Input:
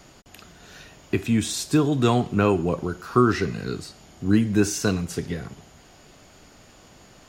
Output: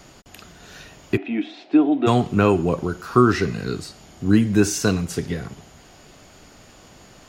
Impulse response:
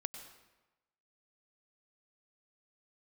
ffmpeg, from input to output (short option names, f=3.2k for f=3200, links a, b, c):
-filter_complex "[0:a]asplit=3[a][b][c];[a]afade=t=out:st=1.16:d=0.02[d];[b]highpass=f=290:w=0.5412,highpass=f=290:w=1.3066,equalizer=f=290:t=q:w=4:g=7,equalizer=f=460:t=q:w=4:g=-8,equalizer=f=720:t=q:w=4:g=7,equalizer=f=1.1k:t=q:w=4:g=-10,equalizer=f=1.6k:t=q:w=4:g=-8,lowpass=f=2.6k:w=0.5412,lowpass=f=2.6k:w=1.3066,afade=t=in:st=1.16:d=0.02,afade=t=out:st=2.06:d=0.02[e];[c]afade=t=in:st=2.06:d=0.02[f];[d][e][f]amix=inputs=3:normalize=0,volume=3dB"